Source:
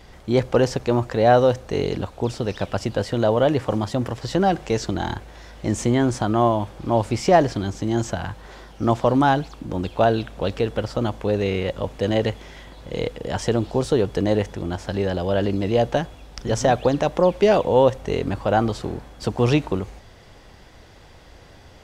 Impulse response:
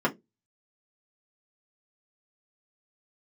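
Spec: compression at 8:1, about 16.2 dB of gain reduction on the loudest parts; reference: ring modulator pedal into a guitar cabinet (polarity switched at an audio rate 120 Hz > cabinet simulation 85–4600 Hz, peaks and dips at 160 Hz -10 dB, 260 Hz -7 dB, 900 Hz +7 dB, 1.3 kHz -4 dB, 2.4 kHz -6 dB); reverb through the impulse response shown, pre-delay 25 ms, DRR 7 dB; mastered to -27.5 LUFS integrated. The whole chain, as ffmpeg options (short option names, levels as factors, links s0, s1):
-filter_complex "[0:a]acompressor=threshold=0.0398:ratio=8,asplit=2[s0][s1];[1:a]atrim=start_sample=2205,adelay=25[s2];[s1][s2]afir=irnorm=-1:irlink=0,volume=0.106[s3];[s0][s3]amix=inputs=2:normalize=0,aeval=exprs='val(0)*sgn(sin(2*PI*120*n/s))':c=same,highpass=85,equalizer=f=160:t=q:w=4:g=-10,equalizer=f=260:t=q:w=4:g=-7,equalizer=f=900:t=q:w=4:g=7,equalizer=f=1300:t=q:w=4:g=-4,equalizer=f=2400:t=q:w=4:g=-6,lowpass=f=4600:w=0.5412,lowpass=f=4600:w=1.3066,volume=1.88"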